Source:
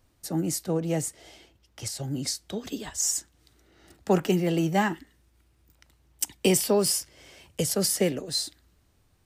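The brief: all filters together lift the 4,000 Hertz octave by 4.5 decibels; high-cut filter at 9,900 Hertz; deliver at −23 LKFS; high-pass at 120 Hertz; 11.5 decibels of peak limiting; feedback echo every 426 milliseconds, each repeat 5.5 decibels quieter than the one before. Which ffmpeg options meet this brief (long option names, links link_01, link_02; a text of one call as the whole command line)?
ffmpeg -i in.wav -af "highpass=120,lowpass=9900,equalizer=frequency=4000:width_type=o:gain=6,alimiter=limit=-20.5dB:level=0:latency=1,aecho=1:1:426|852|1278|1704|2130|2556|2982:0.531|0.281|0.149|0.079|0.0419|0.0222|0.0118,volume=7.5dB" out.wav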